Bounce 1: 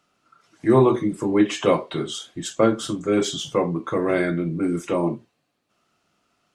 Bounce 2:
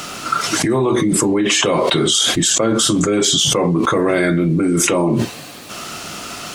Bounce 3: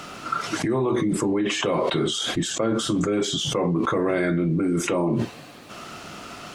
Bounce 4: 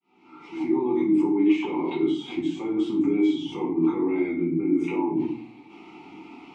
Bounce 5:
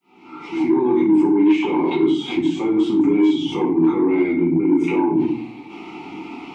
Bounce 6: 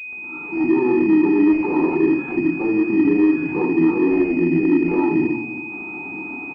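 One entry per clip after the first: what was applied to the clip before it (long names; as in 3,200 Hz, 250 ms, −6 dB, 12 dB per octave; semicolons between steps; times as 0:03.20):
high-shelf EQ 3,600 Hz +8.5 dB; envelope flattener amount 100%; level −3 dB
high-shelf EQ 4,200 Hz −11.5 dB; level −6.5 dB
fade in at the beginning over 0.78 s; formant filter u; rectangular room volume 40 cubic metres, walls mixed, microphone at 1.2 metres
in parallel at −2 dB: downward compressor, threshold −29 dBFS, peak gain reduction 13.5 dB; on the sum: soft clipping −13 dBFS, distortion −20 dB; level +5.5 dB
surface crackle 92 per second −34 dBFS; single-tap delay 331 ms −15.5 dB; switching amplifier with a slow clock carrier 2,500 Hz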